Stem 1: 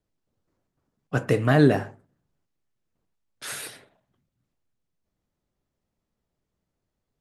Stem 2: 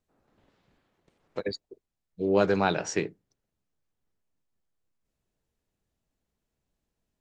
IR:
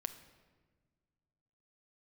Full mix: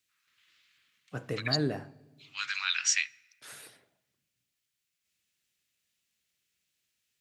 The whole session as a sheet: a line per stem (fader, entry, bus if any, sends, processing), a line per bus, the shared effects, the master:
-16.0 dB, 0.00 s, send -7 dB, none
0.0 dB, 0.00 s, send -10.5 dB, peak limiter -17.5 dBFS, peak gain reduction 8 dB; steep high-pass 1.2 kHz 48 dB/octave; resonant high shelf 1.8 kHz +7.5 dB, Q 1.5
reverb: on, RT60 1.5 s, pre-delay 6 ms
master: high-pass 63 Hz

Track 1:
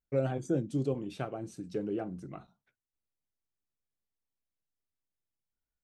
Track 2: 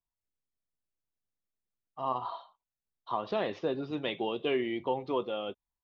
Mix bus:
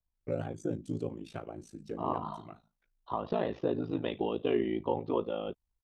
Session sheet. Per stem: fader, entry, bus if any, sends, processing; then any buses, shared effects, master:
-1.5 dB, 0.15 s, no send, none
+0.5 dB, 0.00 s, no send, tilt EQ -2.5 dB/octave; band-stop 2.2 kHz, Q 14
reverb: none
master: ring modulator 27 Hz

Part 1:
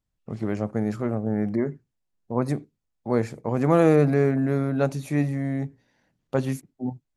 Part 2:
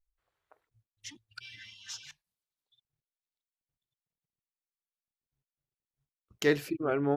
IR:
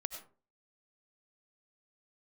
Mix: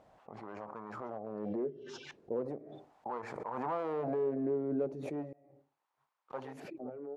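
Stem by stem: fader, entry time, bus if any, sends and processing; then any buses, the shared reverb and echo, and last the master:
-3.0 dB, 0.00 s, muted 5.33–6.30 s, send -23 dB, none
-1.5 dB, 0.00 s, no send, bass shelf 190 Hz -9.5 dB; auto duck -12 dB, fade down 0.25 s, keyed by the first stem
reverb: on, RT60 0.40 s, pre-delay 55 ms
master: hard clipper -21.5 dBFS, distortion -9 dB; wah-wah 0.37 Hz 390–1000 Hz, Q 3.3; swell ahead of each attack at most 29 dB/s

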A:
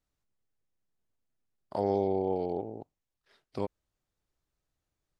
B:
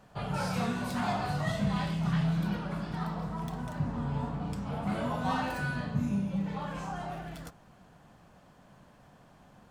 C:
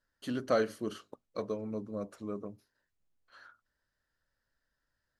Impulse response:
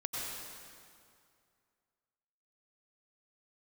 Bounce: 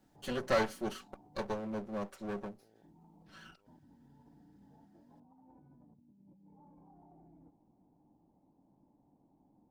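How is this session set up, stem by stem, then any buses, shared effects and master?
-1.5 dB, 0.00 s, bus A, no send, compression, threshold -32 dBFS, peak gain reduction 9.5 dB
-7.5 dB, 0.00 s, bus A, no send, cascade formant filter u
+2.5 dB, 0.00 s, no bus, no send, comb filter that takes the minimum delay 5.3 ms
bus A: 0.0 dB, compressor with a negative ratio -59 dBFS, ratio -1; peak limiter -50.5 dBFS, peak gain reduction 10 dB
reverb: none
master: bass shelf 440 Hz -4.5 dB

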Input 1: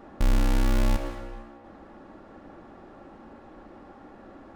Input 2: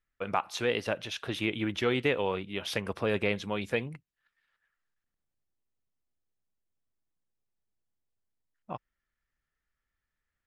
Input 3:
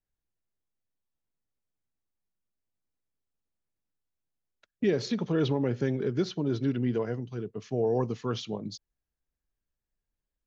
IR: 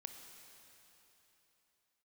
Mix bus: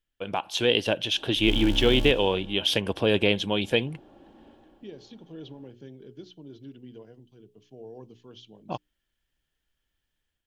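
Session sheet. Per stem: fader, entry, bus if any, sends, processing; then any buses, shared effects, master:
-6.0 dB, 1.15 s, no send, attacks held to a fixed rise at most 200 dB/s; auto duck -7 dB, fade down 0.30 s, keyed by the third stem
+0.5 dB, 0.00 s, no send, level rider gain up to 5.5 dB
-17.0 dB, 0.00 s, no send, hum notches 60/120/180/240/300/360/420 Hz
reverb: none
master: graphic EQ with 31 bands 315 Hz +4 dB, 1.25 kHz -11 dB, 2 kHz -7 dB, 3.15 kHz +11 dB

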